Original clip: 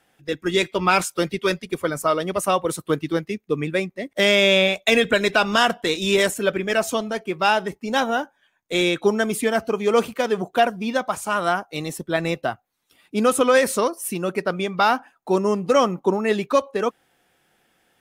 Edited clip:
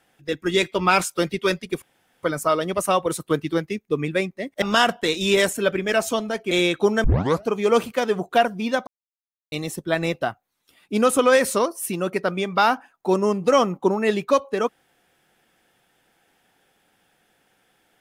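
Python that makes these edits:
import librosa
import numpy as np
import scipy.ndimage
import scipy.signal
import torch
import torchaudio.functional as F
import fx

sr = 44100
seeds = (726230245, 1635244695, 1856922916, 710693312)

y = fx.edit(x, sr, fx.insert_room_tone(at_s=1.82, length_s=0.41),
    fx.cut(start_s=4.21, length_s=1.22),
    fx.cut(start_s=7.32, length_s=1.41),
    fx.tape_start(start_s=9.26, length_s=0.4),
    fx.silence(start_s=11.09, length_s=0.65), tone=tone)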